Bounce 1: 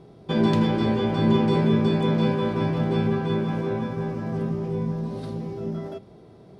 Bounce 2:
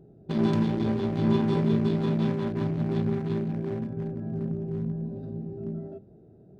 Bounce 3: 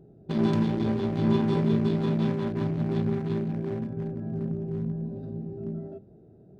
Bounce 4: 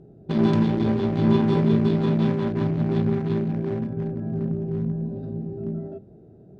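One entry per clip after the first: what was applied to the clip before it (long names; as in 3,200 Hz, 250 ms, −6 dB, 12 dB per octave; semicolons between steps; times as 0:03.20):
adaptive Wiener filter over 41 samples; notch filter 500 Hz, Q 12; level −3 dB
no processing that can be heard
high-frequency loss of the air 52 metres; level +4.5 dB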